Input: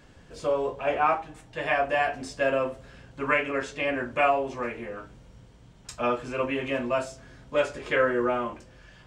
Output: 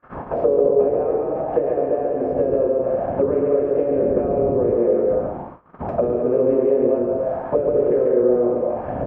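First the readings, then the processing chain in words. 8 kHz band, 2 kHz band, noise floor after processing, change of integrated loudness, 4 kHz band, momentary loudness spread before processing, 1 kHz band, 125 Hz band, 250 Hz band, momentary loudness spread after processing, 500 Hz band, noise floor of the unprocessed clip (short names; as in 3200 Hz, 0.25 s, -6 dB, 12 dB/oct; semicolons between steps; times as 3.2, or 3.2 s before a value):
under -30 dB, under -15 dB, -37 dBFS, +7.5 dB, under -20 dB, 15 LU, -1.0 dB, +10.0 dB, +10.5 dB, 6 LU, +11.5 dB, -53 dBFS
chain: per-bin compression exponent 0.6; wind noise 210 Hz -38 dBFS; HPF 83 Hz 6 dB/oct; gate -36 dBFS, range -43 dB; in parallel at +1.5 dB: limiter -15.5 dBFS, peak gain reduction 7 dB; on the sum: compressor 6:1, threshold -22 dBFS, peak gain reduction 10.5 dB; loudspeakers at several distances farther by 48 m -3 dB, 72 m -6 dB, 93 m -9 dB; envelope low-pass 450–1300 Hz down, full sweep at -20 dBFS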